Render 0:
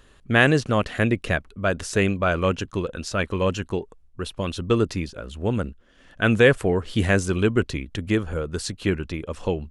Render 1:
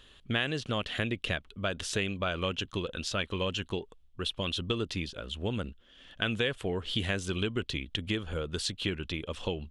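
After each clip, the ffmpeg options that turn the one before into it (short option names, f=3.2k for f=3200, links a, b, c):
-af "equalizer=f=3.3k:t=o:w=0.77:g=14,acompressor=threshold=-22dB:ratio=4,volume=-6dB"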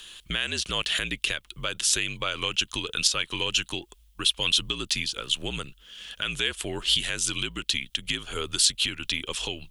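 -af "alimiter=level_in=0.5dB:limit=-24dB:level=0:latency=1:release=261,volume=-0.5dB,crystalizer=i=10:c=0,afreqshift=-60"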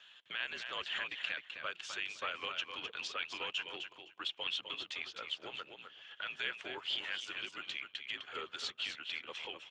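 -af "highpass=590,lowpass=2.2k,aecho=1:1:256|512|768:0.447|0.0804|0.0145,volume=-5.5dB" -ar 32000 -c:a libspeex -b:a 15k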